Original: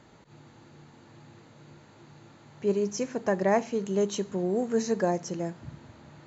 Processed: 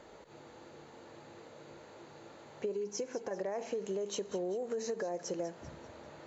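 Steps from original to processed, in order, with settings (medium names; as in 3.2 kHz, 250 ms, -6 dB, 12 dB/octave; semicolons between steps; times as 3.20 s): graphic EQ 125/250/500 Hz -11/-4/+9 dB; peak limiter -20.5 dBFS, peak gain reduction 12 dB; compression 12:1, threshold -33 dBFS, peak gain reduction 10 dB; 2.73–3.31 s: comb of notches 610 Hz; feedback echo behind a high-pass 195 ms, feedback 46%, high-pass 1.4 kHz, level -13.5 dB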